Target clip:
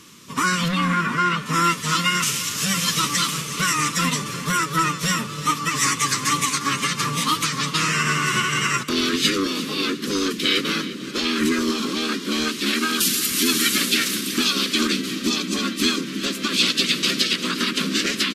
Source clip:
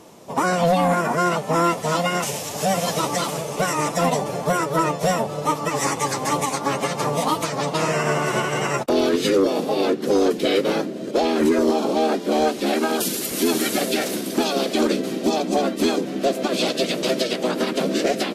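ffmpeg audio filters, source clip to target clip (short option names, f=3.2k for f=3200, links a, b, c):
-filter_complex "[0:a]asettb=1/sr,asplit=3[a][b][c];[a]atrim=end=0.684[d];[b]atrim=start=0.68:end=1.46,asetpts=PTS-STARTPTS,afade=t=in:d=0.004:c=qsin,afade=t=out:st=0.776:d=0.004:c=qsin,acrossover=split=4000[e][f];[f]acompressor=threshold=-52dB:ratio=4:attack=1:release=60[g];[e][g]amix=inputs=2:normalize=0[h];[c]atrim=start=1.456[i];[d][h]acrossfade=d=0.004:c1=hsin:c2=qsin[j];[j][i]acrossfade=d=0.004:c1=qsin:c2=hsin,firequalizer=gain_entry='entry(250,0);entry(730,-27);entry(1100,3);entry(3000,8);entry(10000,4)':delay=0.05:min_phase=1,asplit=2[k][l];[l]aecho=0:1:352|704|1056:0.168|0.0604|0.0218[m];[k][m]amix=inputs=2:normalize=0"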